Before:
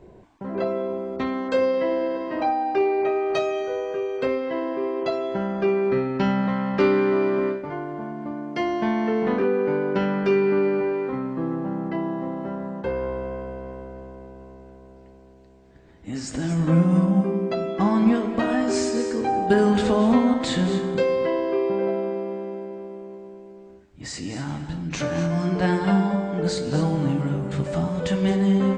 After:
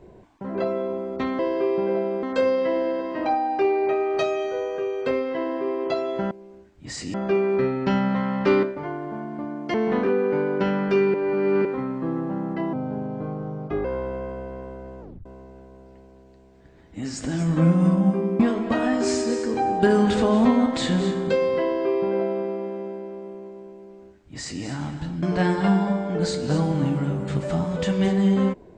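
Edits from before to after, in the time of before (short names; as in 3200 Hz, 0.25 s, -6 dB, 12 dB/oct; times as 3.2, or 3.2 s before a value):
6.96–7.5 cut
8.61–9.09 cut
10.49–11 reverse
12.08–12.95 speed 78%
14.11 tape stop 0.25 s
17.5–18.07 cut
21.31–22.15 copy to 1.39
23.47–24.3 copy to 5.47
24.9–25.46 cut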